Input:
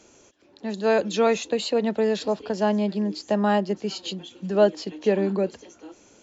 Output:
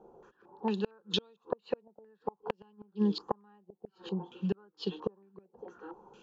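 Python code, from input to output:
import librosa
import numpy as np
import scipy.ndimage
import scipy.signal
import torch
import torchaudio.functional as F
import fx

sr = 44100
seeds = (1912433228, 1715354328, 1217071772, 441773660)

y = fx.fixed_phaser(x, sr, hz=420.0, stages=8)
y = fx.gate_flip(y, sr, shuts_db=-19.0, range_db=-38)
y = fx.filter_held_lowpass(y, sr, hz=4.4, low_hz=710.0, high_hz=3400.0)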